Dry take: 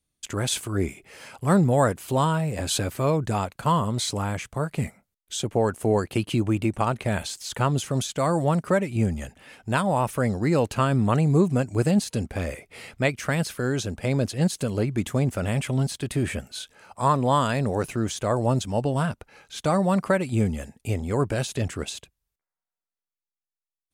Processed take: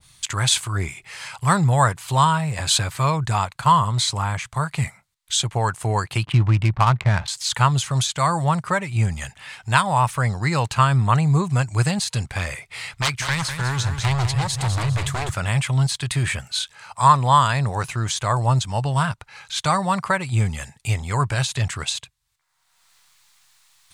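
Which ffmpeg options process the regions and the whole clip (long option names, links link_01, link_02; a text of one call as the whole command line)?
ffmpeg -i in.wav -filter_complex "[0:a]asettb=1/sr,asplit=3[link_01][link_02][link_03];[link_01]atrim=end=6.254[link_04];[link_02]atrim=start=6.25:end=7.28,asetpts=PTS-STARTPTS,afade=type=in:duration=0.004:curve=qsin,afade=type=out:start_time=1.026:duration=0.004:curve=qsin,bass=frequency=250:gain=5,treble=frequency=4000:gain=-8,adynamicsmooth=sensitivity=6:basefreq=850[link_05];[link_03]atrim=start=7.276[link_06];[link_04][link_05]acrossfade=duration=0.004:curve1=hsin:curve2=qsin[link_07];[link_07][link_06]acrossfade=duration=0.004:curve1=qsin:curve2=hsin,asettb=1/sr,asplit=3[link_08][link_09][link_10];[link_08]atrim=end=12.864[link_11];[link_09]atrim=start=12.86:end=15.34,asetpts=PTS-STARTPTS,afade=type=in:duration=0.004:curve=qsin,afade=type=out:start_time=2.476:duration=0.004:curve=qsin,asubboost=boost=9:cutoff=110,aeval=exprs='0.0891*(abs(mod(val(0)/0.0891+3,4)-2)-1)':channel_layout=same,aecho=1:1:200|400|600|800:0.398|0.131|0.0434|0.0143,atrim=end_sample=109368[link_12];[link_10]atrim=start=15.336[link_13];[link_11][link_12]acrossfade=duration=0.004:curve1=hsin:curve2=qsin[link_14];[link_14][link_13]acrossfade=duration=0.004:curve1=qsin:curve2=hsin,equalizer=frequency=125:width_type=o:width=1:gain=10,equalizer=frequency=250:width_type=o:width=1:gain=-10,equalizer=frequency=500:width_type=o:width=1:gain=-6,equalizer=frequency=1000:width_type=o:width=1:gain=10,equalizer=frequency=2000:width_type=o:width=1:gain=7,equalizer=frequency=4000:width_type=o:width=1:gain=10,equalizer=frequency=8000:width_type=o:width=1:gain=9,acompressor=mode=upward:threshold=-33dB:ratio=2.5,adynamicequalizer=threshold=0.0282:dfrequency=1500:dqfactor=0.7:tfrequency=1500:tqfactor=0.7:attack=5:release=100:ratio=0.375:range=3.5:mode=cutabove:tftype=highshelf,volume=-1dB" out.wav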